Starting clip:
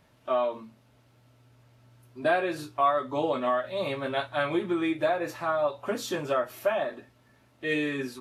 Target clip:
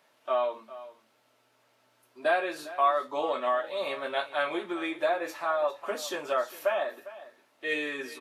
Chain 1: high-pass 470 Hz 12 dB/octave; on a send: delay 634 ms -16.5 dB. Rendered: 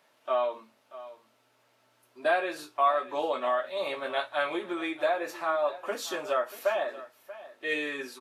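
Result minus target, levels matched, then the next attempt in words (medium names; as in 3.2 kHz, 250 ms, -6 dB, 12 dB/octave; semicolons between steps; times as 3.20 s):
echo 231 ms late
high-pass 470 Hz 12 dB/octave; on a send: delay 403 ms -16.5 dB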